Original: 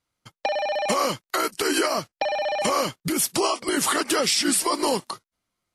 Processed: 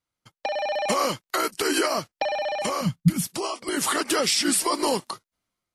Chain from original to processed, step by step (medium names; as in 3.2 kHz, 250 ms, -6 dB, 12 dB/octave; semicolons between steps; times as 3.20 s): 2.81–3.27 s: resonant low shelf 260 Hz +13 dB, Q 3; level rider gain up to 6 dB; trim -6.5 dB